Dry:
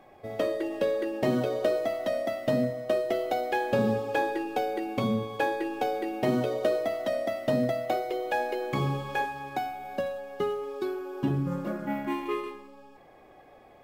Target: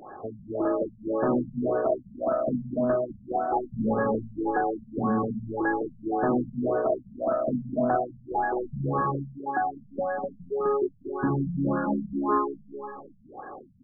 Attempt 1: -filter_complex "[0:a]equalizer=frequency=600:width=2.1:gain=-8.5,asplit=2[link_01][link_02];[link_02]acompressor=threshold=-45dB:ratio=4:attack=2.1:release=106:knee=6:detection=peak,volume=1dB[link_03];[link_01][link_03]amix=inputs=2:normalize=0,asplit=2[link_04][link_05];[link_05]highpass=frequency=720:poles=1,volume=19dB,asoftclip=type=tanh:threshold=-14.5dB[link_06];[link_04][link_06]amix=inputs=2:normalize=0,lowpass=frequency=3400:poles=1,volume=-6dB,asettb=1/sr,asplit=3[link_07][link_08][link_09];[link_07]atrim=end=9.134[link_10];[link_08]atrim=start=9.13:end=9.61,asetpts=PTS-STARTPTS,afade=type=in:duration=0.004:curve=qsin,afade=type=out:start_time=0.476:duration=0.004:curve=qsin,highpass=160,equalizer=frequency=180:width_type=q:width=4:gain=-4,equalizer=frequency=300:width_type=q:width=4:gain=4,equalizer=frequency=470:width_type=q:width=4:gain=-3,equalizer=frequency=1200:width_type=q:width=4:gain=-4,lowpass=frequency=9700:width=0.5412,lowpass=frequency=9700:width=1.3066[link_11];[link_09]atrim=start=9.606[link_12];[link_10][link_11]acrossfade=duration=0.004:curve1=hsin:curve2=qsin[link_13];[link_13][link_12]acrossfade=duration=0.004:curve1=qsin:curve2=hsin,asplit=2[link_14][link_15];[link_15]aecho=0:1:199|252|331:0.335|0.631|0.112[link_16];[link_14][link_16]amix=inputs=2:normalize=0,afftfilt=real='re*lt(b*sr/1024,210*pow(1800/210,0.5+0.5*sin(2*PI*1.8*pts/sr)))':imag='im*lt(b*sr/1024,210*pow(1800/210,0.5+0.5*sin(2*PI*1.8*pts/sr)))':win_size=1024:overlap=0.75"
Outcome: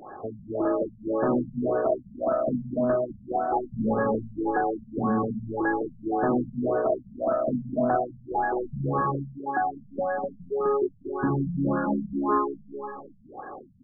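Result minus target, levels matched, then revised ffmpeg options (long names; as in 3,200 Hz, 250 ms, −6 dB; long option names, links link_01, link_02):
downward compressor: peak gain reduction −7 dB
-filter_complex "[0:a]equalizer=frequency=600:width=2.1:gain=-8.5,asplit=2[link_01][link_02];[link_02]acompressor=threshold=-54.5dB:ratio=4:attack=2.1:release=106:knee=6:detection=peak,volume=1dB[link_03];[link_01][link_03]amix=inputs=2:normalize=0,asplit=2[link_04][link_05];[link_05]highpass=frequency=720:poles=1,volume=19dB,asoftclip=type=tanh:threshold=-14.5dB[link_06];[link_04][link_06]amix=inputs=2:normalize=0,lowpass=frequency=3400:poles=1,volume=-6dB,asettb=1/sr,asplit=3[link_07][link_08][link_09];[link_07]atrim=end=9.134[link_10];[link_08]atrim=start=9.13:end=9.61,asetpts=PTS-STARTPTS,afade=type=in:duration=0.004:curve=qsin,afade=type=out:start_time=0.476:duration=0.004:curve=qsin,highpass=160,equalizer=frequency=180:width_type=q:width=4:gain=-4,equalizer=frequency=300:width_type=q:width=4:gain=4,equalizer=frequency=470:width_type=q:width=4:gain=-3,equalizer=frequency=1200:width_type=q:width=4:gain=-4,lowpass=frequency=9700:width=0.5412,lowpass=frequency=9700:width=1.3066[link_11];[link_09]atrim=start=9.606[link_12];[link_10][link_11]acrossfade=duration=0.004:curve1=hsin:curve2=qsin[link_13];[link_13][link_12]acrossfade=duration=0.004:curve1=qsin:curve2=hsin,asplit=2[link_14][link_15];[link_15]aecho=0:1:199|252|331:0.335|0.631|0.112[link_16];[link_14][link_16]amix=inputs=2:normalize=0,afftfilt=real='re*lt(b*sr/1024,210*pow(1800/210,0.5+0.5*sin(2*PI*1.8*pts/sr)))':imag='im*lt(b*sr/1024,210*pow(1800/210,0.5+0.5*sin(2*PI*1.8*pts/sr)))':win_size=1024:overlap=0.75"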